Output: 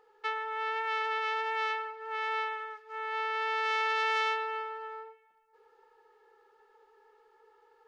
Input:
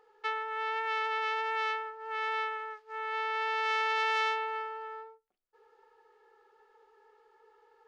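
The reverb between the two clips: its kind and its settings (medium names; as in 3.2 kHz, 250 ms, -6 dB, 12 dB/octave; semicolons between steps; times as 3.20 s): algorithmic reverb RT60 2.2 s, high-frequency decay 0.55×, pre-delay 40 ms, DRR 15.5 dB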